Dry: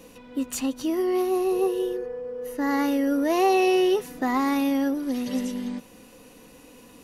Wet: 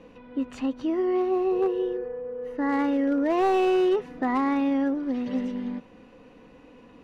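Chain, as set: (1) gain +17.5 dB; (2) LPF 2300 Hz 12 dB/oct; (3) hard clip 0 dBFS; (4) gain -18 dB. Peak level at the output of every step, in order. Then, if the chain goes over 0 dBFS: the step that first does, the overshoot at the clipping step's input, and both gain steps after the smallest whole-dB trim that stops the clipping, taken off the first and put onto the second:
+6.0, +5.5, 0.0, -18.0 dBFS; step 1, 5.5 dB; step 1 +11.5 dB, step 4 -12 dB

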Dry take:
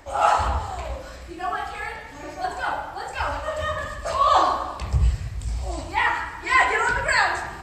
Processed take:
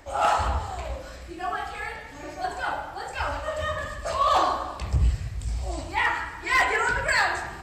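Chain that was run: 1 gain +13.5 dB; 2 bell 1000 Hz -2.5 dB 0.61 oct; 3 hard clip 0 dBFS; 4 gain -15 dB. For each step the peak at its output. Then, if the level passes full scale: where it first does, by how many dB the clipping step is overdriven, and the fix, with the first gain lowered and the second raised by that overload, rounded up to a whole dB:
+9.0, +7.5, 0.0, -15.0 dBFS; step 1, 7.5 dB; step 1 +5.5 dB, step 4 -7 dB

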